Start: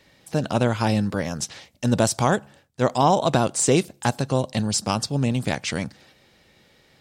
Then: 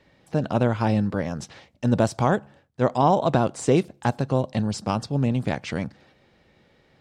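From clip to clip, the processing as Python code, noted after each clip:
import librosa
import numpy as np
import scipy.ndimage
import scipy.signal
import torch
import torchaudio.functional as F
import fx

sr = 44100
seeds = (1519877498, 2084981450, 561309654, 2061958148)

y = fx.lowpass(x, sr, hz=1600.0, slope=6)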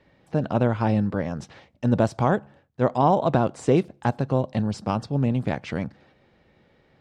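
y = fx.high_shelf(x, sr, hz=4300.0, db=-10.5)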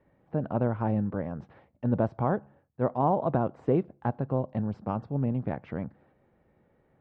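y = scipy.signal.sosfilt(scipy.signal.butter(2, 1400.0, 'lowpass', fs=sr, output='sos'), x)
y = y * 10.0 ** (-5.5 / 20.0)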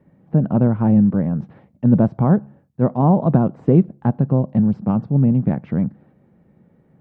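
y = fx.peak_eq(x, sr, hz=180.0, db=14.5, octaves=1.5)
y = y * 10.0 ** (3.0 / 20.0)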